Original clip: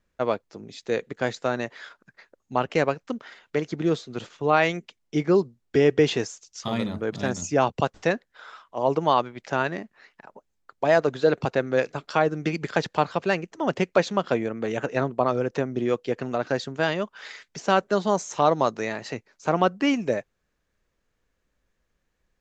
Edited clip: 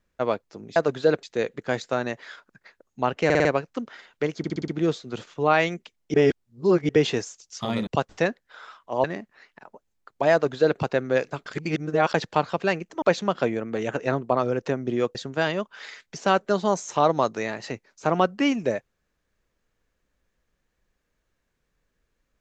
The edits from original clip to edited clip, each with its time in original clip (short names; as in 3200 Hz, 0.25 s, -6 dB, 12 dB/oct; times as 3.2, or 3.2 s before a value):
2.78 stutter 0.05 s, 5 plays
3.71 stutter 0.06 s, 6 plays
5.17–5.92 reverse
6.9–7.72 cut
8.89–9.66 cut
10.95–11.42 copy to 0.76
12.08–12.76 reverse
13.64–13.91 cut
16.04–16.57 cut